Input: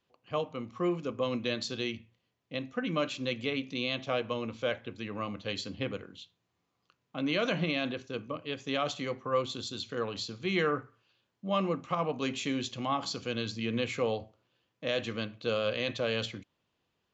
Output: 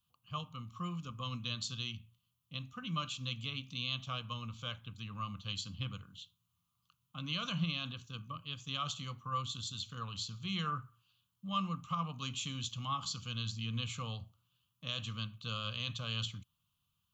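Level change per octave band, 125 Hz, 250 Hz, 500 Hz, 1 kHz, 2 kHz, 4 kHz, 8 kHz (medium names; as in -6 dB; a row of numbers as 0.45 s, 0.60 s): +0.5 dB, -9.0 dB, -21.5 dB, -4.5 dB, -9.0 dB, -1.5 dB, no reading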